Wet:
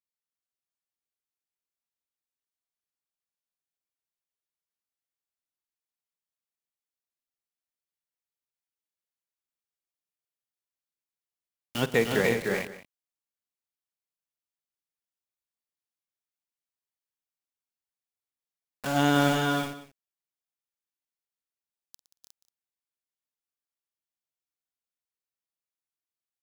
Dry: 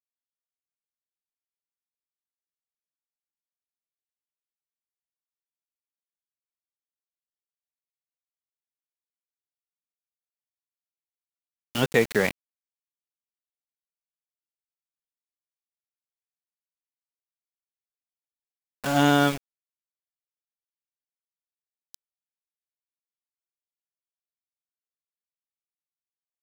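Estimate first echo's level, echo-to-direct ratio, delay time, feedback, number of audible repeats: −17.5 dB, −1.5 dB, 48 ms, repeats not evenly spaced, 8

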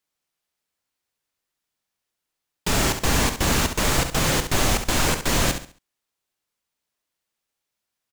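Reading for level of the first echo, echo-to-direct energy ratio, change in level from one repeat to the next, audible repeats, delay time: −8.5 dB, −8.0 dB, −10.0 dB, 3, 68 ms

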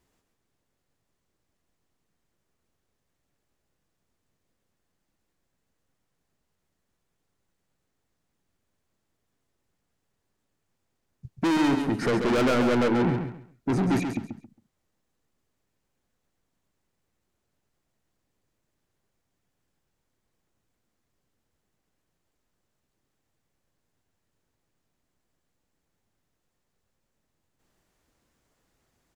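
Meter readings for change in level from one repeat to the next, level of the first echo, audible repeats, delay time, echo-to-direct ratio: −12.5 dB, −7.0 dB, 3, 136 ms, −6.5 dB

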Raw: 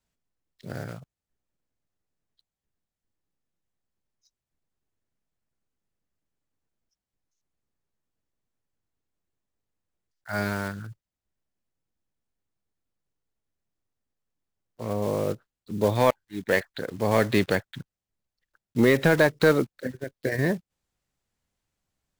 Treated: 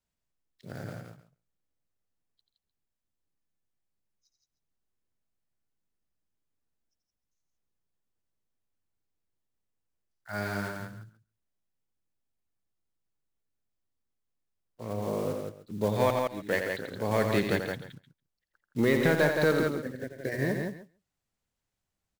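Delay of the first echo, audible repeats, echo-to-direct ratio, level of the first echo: 86 ms, 5, −2.0 dB, −7.0 dB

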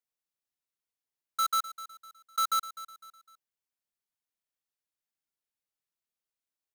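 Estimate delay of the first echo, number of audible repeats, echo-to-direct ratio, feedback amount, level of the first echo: 253 ms, 3, −14.5 dB, 38%, −15.0 dB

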